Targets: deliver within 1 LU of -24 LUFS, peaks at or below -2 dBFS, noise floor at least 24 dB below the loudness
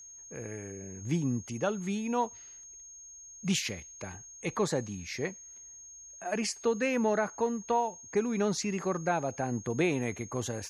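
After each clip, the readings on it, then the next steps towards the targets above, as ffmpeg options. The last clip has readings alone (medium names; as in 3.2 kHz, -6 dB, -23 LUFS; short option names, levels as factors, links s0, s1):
steady tone 6.5 kHz; tone level -47 dBFS; loudness -32.0 LUFS; peak level -16.0 dBFS; loudness target -24.0 LUFS
-> -af "bandreject=f=6500:w=30"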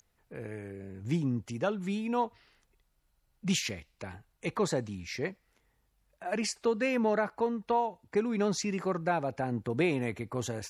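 steady tone not found; loudness -32.0 LUFS; peak level -16.0 dBFS; loudness target -24.0 LUFS
-> -af "volume=2.51"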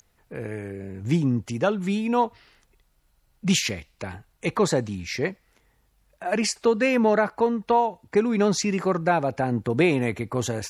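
loudness -24.5 LUFS; peak level -8.0 dBFS; noise floor -66 dBFS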